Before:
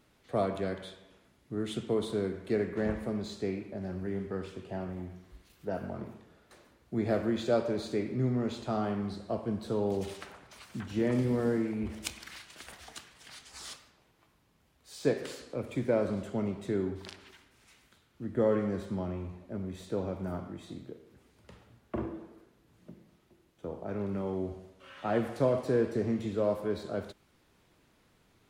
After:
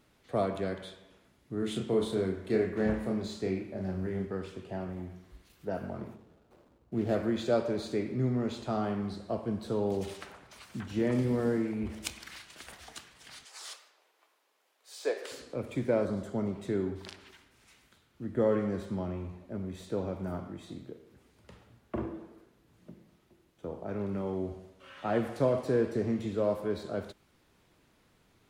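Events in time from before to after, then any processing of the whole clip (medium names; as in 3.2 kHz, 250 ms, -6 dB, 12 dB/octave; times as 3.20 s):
1.59–4.25 s: doubling 32 ms -4 dB
6.15–7.15 s: median filter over 25 samples
13.45–15.32 s: high-pass 430 Hz 24 dB/octave
16.05–16.55 s: peaking EQ 2.6 kHz -10 dB 0.45 oct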